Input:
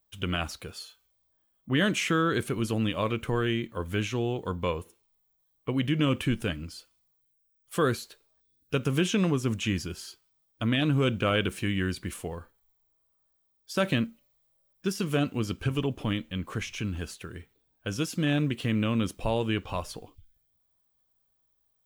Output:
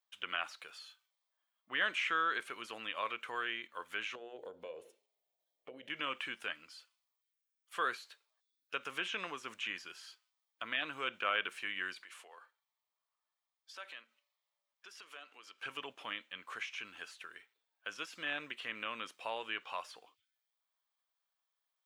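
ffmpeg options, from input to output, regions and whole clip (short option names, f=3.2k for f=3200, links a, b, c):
-filter_complex "[0:a]asettb=1/sr,asplit=3[a][b][c];[a]atrim=end=4.154[d];[b]atrim=start=4.15:end=5.9,asetpts=PTS-STARTPTS,afade=t=in:d=0.004:c=qsin,afade=t=out:st=1.746:d=0.004:c=qsin,lowshelf=f=780:t=q:w=3:g=11,acompressor=threshold=-26dB:ratio=10:attack=3.2:release=140:knee=1:detection=peak,bandreject=f=60:t=h:w=6,bandreject=f=120:t=h:w=6,bandreject=f=180:t=h:w=6,bandreject=f=240:t=h:w=6,bandreject=f=300:t=h:w=6,bandreject=f=360:t=h:w=6,bandreject=f=420:t=h:w=6,bandreject=f=480:t=h:w=6,bandreject=f=540:t=h:w=6,bandreject=f=600:t=h:w=6[e];[c]atrim=start=5.896[f];[d][e]acrossfade=d=0.004:c1=hsin:c2=qsin[g];[g][f]acrossfade=d=0.004:c1=qsin:c2=hsin,asettb=1/sr,asplit=3[h][i][j];[h]atrim=end=12.024[k];[i]atrim=start=12.02:end=15.62,asetpts=PTS-STARTPTS,afade=t=in:d=0.004:c=qsin,afade=t=out:st=3.596:d=0.004:c=qsin,acompressor=threshold=-38dB:ratio=3:attack=3.2:release=140:knee=1:detection=peak,highpass=390,highshelf=f=9.2k:g=-6.5[l];[j]atrim=start=15.616[m];[k][l]acrossfade=d=0.004:c1=hsin:c2=qsin[n];[n][m]acrossfade=d=0.004:c1=qsin:c2=hsin,aemphasis=mode=reproduction:type=50kf,acrossover=split=3200[o][p];[p]acompressor=threshold=-52dB:ratio=4:attack=1:release=60[q];[o][q]amix=inputs=2:normalize=0,highpass=1.2k"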